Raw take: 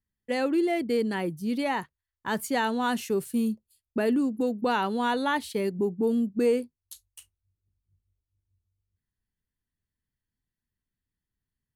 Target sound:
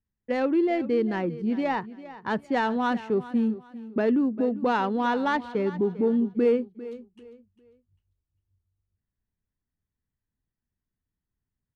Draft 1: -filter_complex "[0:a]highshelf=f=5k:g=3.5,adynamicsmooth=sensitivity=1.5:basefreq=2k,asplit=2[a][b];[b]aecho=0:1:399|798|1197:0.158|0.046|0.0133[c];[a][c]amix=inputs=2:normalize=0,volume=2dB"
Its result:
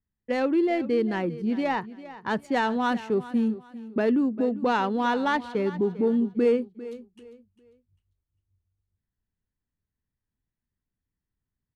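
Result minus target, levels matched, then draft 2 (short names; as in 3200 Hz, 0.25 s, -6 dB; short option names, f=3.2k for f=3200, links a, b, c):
8000 Hz band +5.0 dB
-filter_complex "[0:a]highshelf=f=5k:g=-6,adynamicsmooth=sensitivity=1.5:basefreq=2k,asplit=2[a][b];[b]aecho=0:1:399|798|1197:0.158|0.046|0.0133[c];[a][c]amix=inputs=2:normalize=0,volume=2dB"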